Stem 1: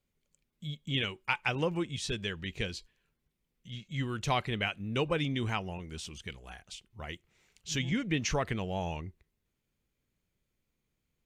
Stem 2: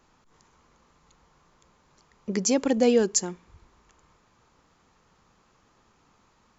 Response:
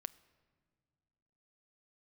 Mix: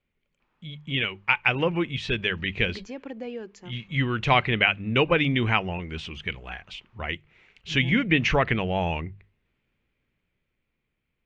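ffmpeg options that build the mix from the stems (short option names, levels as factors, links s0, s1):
-filter_complex "[0:a]volume=1.33[s0];[1:a]acompressor=threshold=0.0178:ratio=2,adelay=400,volume=0.266[s1];[s0][s1]amix=inputs=2:normalize=0,bandreject=f=50:t=h:w=6,bandreject=f=100:t=h:w=6,bandreject=f=150:t=h:w=6,bandreject=f=200:t=h:w=6,dynaudnorm=f=240:g=13:m=2,lowpass=f=2500:t=q:w=1.8"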